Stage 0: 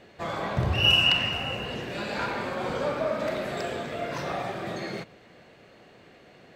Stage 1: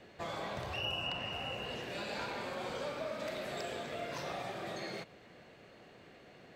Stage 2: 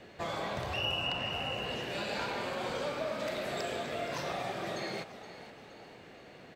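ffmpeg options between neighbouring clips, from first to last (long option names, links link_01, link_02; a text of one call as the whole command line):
ffmpeg -i in.wav -filter_complex "[0:a]acrossover=split=470|1000|2200[link_01][link_02][link_03][link_04];[link_01]acompressor=threshold=-43dB:ratio=4[link_05];[link_02]acompressor=threshold=-38dB:ratio=4[link_06];[link_03]acompressor=threshold=-49dB:ratio=4[link_07];[link_04]acompressor=threshold=-38dB:ratio=4[link_08];[link_05][link_06][link_07][link_08]amix=inputs=4:normalize=0,volume=-4dB" out.wav
ffmpeg -i in.wav -filter_complex "[0:a]asplit=6[link_01][link_02][link_03][link_04][link_05][link_06];[link_02]adelay=471,afreqshift=48,volume=-14dB[link_07];[link_03]adelay=942,afreqshift=96,volume=-20.4dB[link_08];[link_04]adelay=1413,afreqshift=144,volume=-26.8dB[link_09];[link_05]adelay=1884,afreqshift=192,volume=-33.1dB[link_10];[link_06]adelay=2355,afreqshift=240,volume=-39.5dB[link_11];[link_01][link_07][link_08][link_09][link_10][link_11]amix=inputs=6:normalize=0,volume=4dB" out.wav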